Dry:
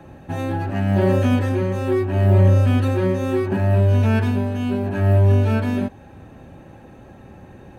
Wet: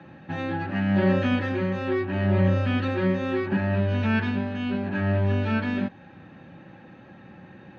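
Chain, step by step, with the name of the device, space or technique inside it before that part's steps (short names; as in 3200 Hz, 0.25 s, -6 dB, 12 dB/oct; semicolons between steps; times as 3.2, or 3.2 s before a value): kitchen radio (speaker cabinet 170–4400 Hz, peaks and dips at 180 Hz +4 dB, 250 Hz -4 dB, 420 Hz -10 dB, 670 Hz -8 dB, 1000 Hz -4 dB, 1800 Hz +3 dB)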